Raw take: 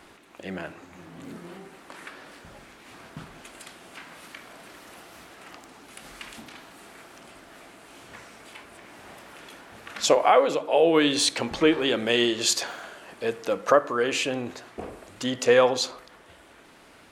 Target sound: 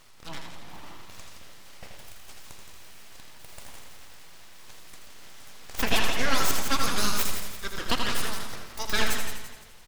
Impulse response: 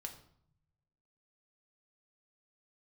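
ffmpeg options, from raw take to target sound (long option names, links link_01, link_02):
-filter_complex "[0:a]asetrate=76440,aresample=44100,equalizer=frequency=980:width=5.4:gain=-12,asplit=6[link_01][link_02][link_03][link_04][link_05][link_06];[link_02]adelay=169,afreqshift=40,volume=-8dB[link_07];[link_03]adelay=338,afreqshift=80,volume=-16dB[link_08];[link_04]adelay=507,afreqshift=120,volume=-23.9dB[link_09];[link_05]adelay=676,afreqshift=160,volume=-31.9dB[link_10];[link_06]adelay=845,afreqshift=200,volume=-39.8dB[link_11];[link_01][link_07][link_08][link_09][link_10][link_11]amix=inputs=6:normalize=0,aeval=exprs='abs(val(0))':channel_layout=same,asplit=2[link_12][link_13];[1:a]atrim=start_sample=2205,asetrate=29106,aresample=44100,adelay=81[link_14];[link_13][link_14]afir=irnorm=-1:irlink=0,volume=-3.5dB[link_15];[link_12][link_15]amix=inputs=2:normalize=0,volume=-1.5dB"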